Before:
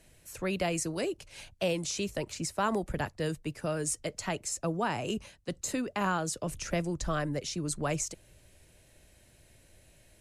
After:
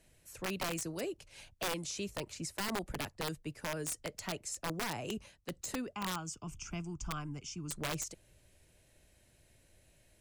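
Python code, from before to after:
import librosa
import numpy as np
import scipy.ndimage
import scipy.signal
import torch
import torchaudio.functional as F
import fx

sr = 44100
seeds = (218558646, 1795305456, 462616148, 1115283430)

y = fx.fixed_phaser(x, sr, hz=2700.0, stages=8, at=(5.94, 7.69), fade=0.02)
y = (np.mod(10.0 ** (23.0 / 20.0) * y + 1.0, 2.0) - 1.0) / 10.0 ** (23.0 / 20.0)
y = y * librosa.db_to_amplitude(-6.0)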